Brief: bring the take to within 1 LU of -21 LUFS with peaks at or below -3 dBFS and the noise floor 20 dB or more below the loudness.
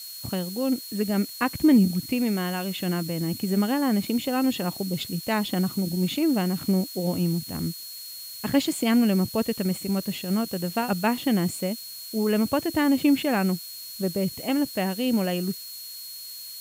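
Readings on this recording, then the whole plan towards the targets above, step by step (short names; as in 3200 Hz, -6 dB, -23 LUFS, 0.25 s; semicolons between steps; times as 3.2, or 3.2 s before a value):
steady tone 4300 Hz; tone level -40 dBFS; noise floor -39 dBFS; noise floor target -46 dBFS; loudness -25.5 LUFS; peak -8.0 dBFS; loudness target -21.0 LUFS
-> notch 4300 Hz, Q 30; denoiser 7 dB, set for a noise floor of -39 dBFS; gain +4.5 dB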